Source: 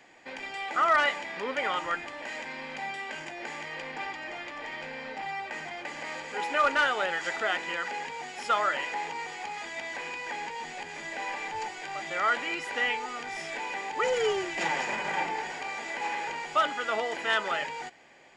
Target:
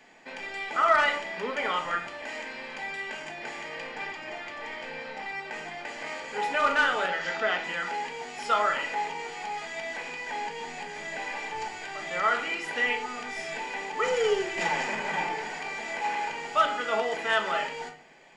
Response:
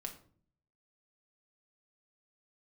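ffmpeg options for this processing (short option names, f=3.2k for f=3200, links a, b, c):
-filter_complex "[0:a]asettb=1/sr,asplit=3[a][b][c];[a]atrim=end=7.084[d];[b]atrim=start=7.08:end=7.64,asetpts=PTS-STARTPTS,afade=t=in:d=0.004:c=qsin,afade=t=out:st=0.556:d=0.004:c=qsin,lowpass=f=6.2k:w=0.5412,lowpass=f=6.2k:w=1.3066[e];[c]atrim=start=7.636[f];[d][e]acrossfade=d=0.004:c1=hsin:c2=qsin[g];[g][f]acrossfade=d=0.004:c1=qsin:c2=hsin[h];[1:a]atrim=start_sample=2205[i];[h][i]afir=irnorm=-1:irlink=0,volume=3.5dB"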